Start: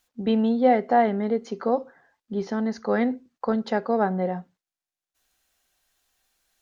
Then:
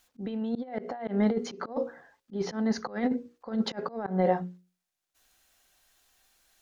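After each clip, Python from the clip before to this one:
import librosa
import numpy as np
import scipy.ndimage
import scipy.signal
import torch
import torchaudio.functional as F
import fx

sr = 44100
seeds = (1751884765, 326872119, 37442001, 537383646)

y = fx.hum_notches(x, sr, base_hz=60, count=9)
y = fx.over_compress(y, sr, threshold_db=-26.0, ratio=-0.5)
y = fx.auto_swell(y, sr, attack_ms=161.0)
y = y * librosa.db_to_amplitude(1.0)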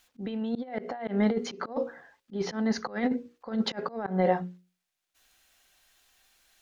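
y = fx.peak_eq(x, sr, hz=2600.0, db=4.5, octaves=1.7)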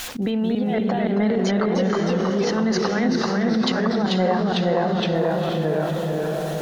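y = fx.echo_pitch(x, sr, ms=220, semitones=-1, count=3, db_per_echo=-3.0)
y = fx.echo_diffused(y, sr, ms=498, feedback_pct=41, wet_db=-7)
y = fx.env_flatten(y, sr, amount_pct=70)
y = y * librosa.db_to_amplitude(2.0)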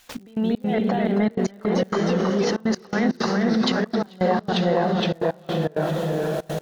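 y = fx.step_gate(x, sr, bpm=164, pattern='.x..xx.xxxxxxx', floor_db=-24.0, edge_ms=4.5)
y = fx.dmg_crackle(y, sr, seeds[0], per_s=130.0, level_db=-44.0)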